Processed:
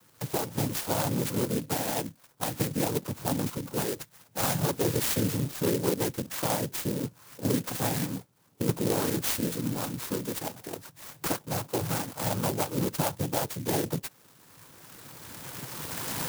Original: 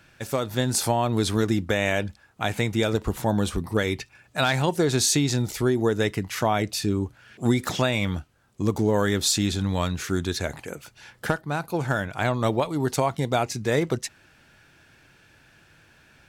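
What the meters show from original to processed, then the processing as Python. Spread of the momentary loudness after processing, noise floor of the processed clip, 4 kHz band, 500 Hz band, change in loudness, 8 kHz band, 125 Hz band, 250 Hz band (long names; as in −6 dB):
12 LU, −61 dBFS, −7.0 dB, −6.5 dB, −5.0 dB, −3.5 dB, −6.0 dB, −5.5 dB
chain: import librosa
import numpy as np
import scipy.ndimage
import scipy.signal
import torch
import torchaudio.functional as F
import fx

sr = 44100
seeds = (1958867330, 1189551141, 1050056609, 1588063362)

y = fx.recorder_agc(x, sr, target_db=-14.5, rise_db_per_s=13.0, max_gain_db=30)
y = fx.noise_vocoder(y, sr, seeds[0], bands=8)
y = fx.clock_jitter(y, sr, seeds[1], jitter_ms=0.13)
y = y * librosa.db_to_amplitude(-5.0)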